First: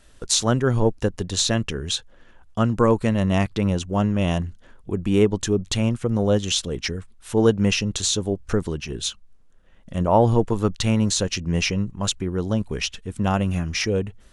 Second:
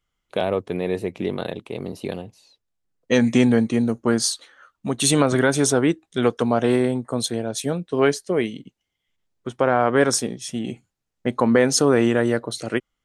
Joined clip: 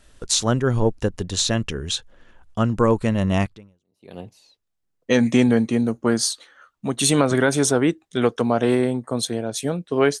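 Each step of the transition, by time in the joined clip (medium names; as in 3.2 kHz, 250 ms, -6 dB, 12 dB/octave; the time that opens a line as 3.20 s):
first
3.82 s: go over to second from 1.83 s, crossfade 0.76 s exponential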